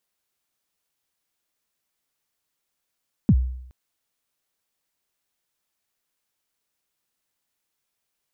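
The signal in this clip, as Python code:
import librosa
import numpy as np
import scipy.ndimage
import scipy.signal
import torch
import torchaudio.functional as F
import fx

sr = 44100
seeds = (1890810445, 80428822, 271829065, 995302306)

y = fx.drum_kick(sr, seeds[0], length_s=0.42, level_db=-10, start_hz=260.0, end_hz=63.0, sweep_ms=57.0, decay_s=0.73, click=False)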